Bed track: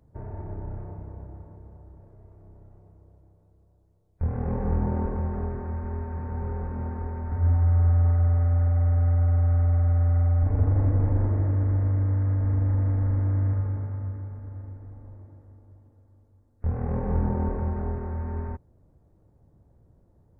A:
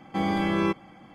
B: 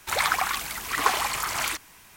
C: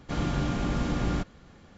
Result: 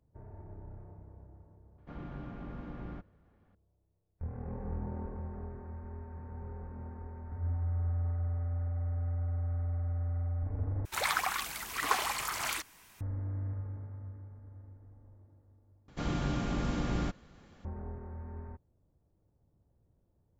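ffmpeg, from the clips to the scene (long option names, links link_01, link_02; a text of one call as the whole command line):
ffmpeg -i bed.wav -i cue0.wav -i cue1.wav -i cue2.wav -filter_complex "[3:a]asplit=2[link_01][link_02];[0:a]volume=-12.5dB[link_03];[link_01]lowpass=1800[link_04];[link_03]asplit=3[link_05][link_06][link_07];[link_05]atrim=end=10.854[link_08];[2:a]atrim=end=2.16,asetpts=PTS-STARTPTS,volume=-7dB[link_09];[link_06]atrim=start=13.006:end=15.884[link_10];[link_02]atrim=end=1.77,asetpts=PTS-STARTPTS,volume=-4.5dB[link_11];[link_07]atrim=start=17.646[link_12];[link_04]atrim=end=1.77,asetpts=PTS-STARTPTS,volume=-15dB,afade=type=in:duration=0.004:curve=hsin,afade=type=out:start_time=1.766:duration=0.004:curve=hsin,adelay=1780[link_13];[link_08][link_09]acrossfade=duration=0.004:curve1=hsin:curve2=hsin[link_14];[link_14][link_10]acrossfade=duration=0.004:curve1=hsin:curve2=hsin[link_15];[link_15][link_11]acrossfade=duration=0.004:curve1=hsin:curve2=hsin[link_16];[link_16][link_12]acrossfade=duration=0.004:curve1=hsin:curve2=hsin[link_17];[link_17][link_13]amix=inputs=2:normalize=0" out.wav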